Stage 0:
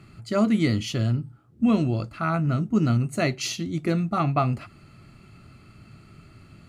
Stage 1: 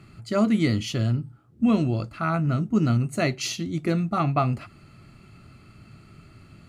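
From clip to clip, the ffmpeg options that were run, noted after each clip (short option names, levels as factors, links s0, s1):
-af anull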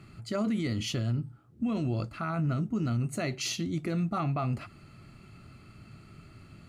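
-af "alimiter=limit=0.0891:level=0:latency=1:release=41,volume=0.794"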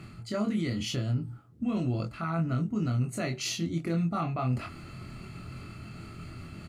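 -filter_complex "[0:a]areverse,acompressor=mode=upward:threshold=0.0224:ratio=2.5,areverse,asplit=2[s0][s1];[s1]adelay=24,volume=0.668[s2];[s0][s2]amix=inputs=2:normalize=0,volume=0.841"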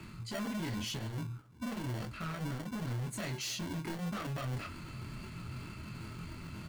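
-filter_complex "[0:a]asoftclip=type=tanh:threshold=0.0178,flanger=delay=2.7:depth=6.8:regen=-48:speed=1.9:shape=triangular,acrossover=split=150|870|2100[s0][s1][s2][s3];[s1]acrusher=samples=35:mix=1:aa=0.000001[s4];[s0][s4][s2][s3]amix=inputs=4:normalize=0,volume=1.58"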